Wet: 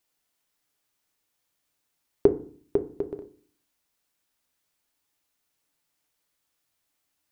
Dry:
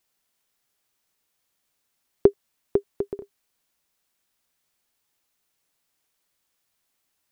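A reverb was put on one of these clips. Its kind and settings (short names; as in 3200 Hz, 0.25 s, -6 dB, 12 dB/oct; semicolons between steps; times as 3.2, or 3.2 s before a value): FDN reverb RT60 0.46 s, low-frequency decay 1.45×, high-frequency decay 0.45×, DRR 8 dB; gain -2.5 dB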